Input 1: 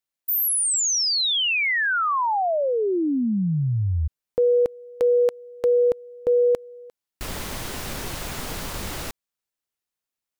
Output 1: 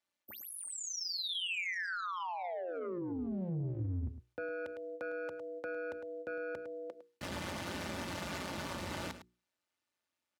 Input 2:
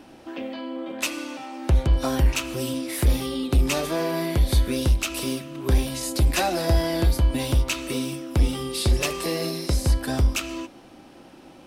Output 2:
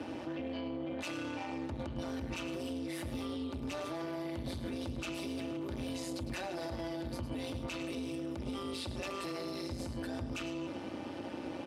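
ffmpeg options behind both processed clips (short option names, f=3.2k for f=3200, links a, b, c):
-filter_complex "[0:a]asoftclip=type=tanh:threshold=-22dB,aecho=1:1:3.4:0.72,areverse,acompressor=threshold=-34dB:ratio=16:attack=0.2:release=70:knee=1:detection=rms,areverse,aemphasis=mode=reproduction:type=50fm,tremolo=f=180:d=0.667,highpass=f=74:w=0.5412,highpass=f=74:w=1.3066,bandreject=f=60:t=h:w=6,bandreject=f=120:t=h:w=6,bandreject=f=180:t=h:w=6,bandreject=f=240:t=h:w=6,bandreject=f=300:t=h:w=6,bandreject=f=360:t=h:w=6,bandreject=f=420:t=h:w=6,bandreject=f=480:t=h:w=6,aecho=1:1:106:0.237,alimiter=level_in=12dB:limit=-24dB:level=0:latency=1:release=29,volume=-12dB,acrossover=split=170|2600[a][b][c];[b]acompressor=threshold=-46dB:ratio=6:attack=54:release=125:knee=2.83:detection=peak[d];[a][d][c]amix=inputs=3:normalize=0,volume=6.5dB"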